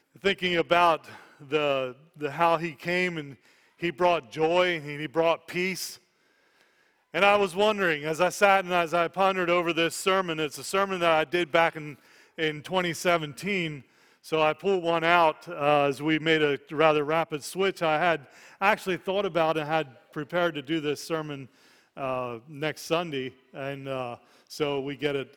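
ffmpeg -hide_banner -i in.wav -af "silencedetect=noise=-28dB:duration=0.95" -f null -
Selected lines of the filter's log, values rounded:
silence_start: 5.87
silence_end: 7.15 | silence_duration: 1.28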